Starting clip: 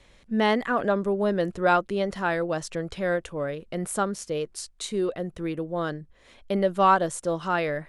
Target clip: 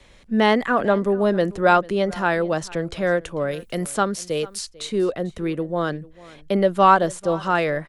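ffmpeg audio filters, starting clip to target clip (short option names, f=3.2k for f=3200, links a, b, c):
-filter_complex "[0:a]asettb=1/sr,asplit=3[a][b][c];[a]atrim=end=3.514[d];[b]atrim=start=3.51:end=4.68,asetpts=PTS-STARTPTS,afade=t=in:d=0.004:c=qsin,afade=t=out:st=1.166:d=0.004:c=qsin,aemphasis=mode=production:type=75fm[e];[c]atrim=start=4.676[f];[d][e]acrossfade=d=0.004:c1=hsin:c2=qsin[g];[g][f]acrossfade=d=0.004:c1=qsin:c2=hsin,acrossover=split=100|640|4900[h][i][j][k];[k]acompressor=threshold=-42dB:ratio=6[l];[h][i][j][l]amix=inputs=4:normalize=0,aecho=1:1:445:0.0841,volume=5dB"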